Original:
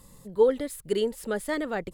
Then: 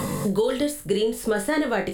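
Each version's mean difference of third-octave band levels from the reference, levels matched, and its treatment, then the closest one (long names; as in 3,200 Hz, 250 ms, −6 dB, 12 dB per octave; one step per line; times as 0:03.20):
8.5 dB: on a send: flutter between parallel walls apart 3.5 metres, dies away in 0.24 s
on the sum: brickwall limiter −19.5 dBFS, peak gain reduction 11.5 dB
multiband upward and downward compressor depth 100%
level +5.5 dB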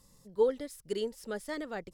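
2.0 dB: parametric band 5,500 Hz +11 dB 0.5 octaves
in parallel at −1 dB: brickwall limiter −21 dBFS, peak gain reduction 10.5 dB
on the sum: expander for the loud parts 1.5 to 1, over −29 dBFS
level −8 dB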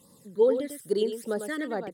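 4.5 dB: high-pass filter 200 Hz 12 dB per octave
all-pass phaser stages 12, 2.4 Hz, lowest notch 730–2,700 Hz
on a send: single-tap delay 99 ms −8.5 dB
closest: second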